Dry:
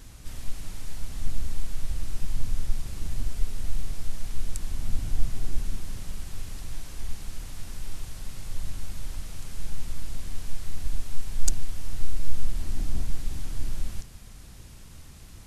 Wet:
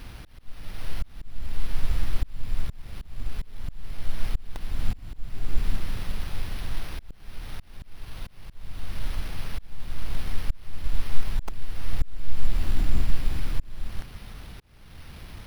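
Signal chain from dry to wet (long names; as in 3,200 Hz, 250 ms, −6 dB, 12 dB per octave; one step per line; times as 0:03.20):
volume swells 553 ms
bad sample-rate conversion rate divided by 6×, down none, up hold
level +5 dB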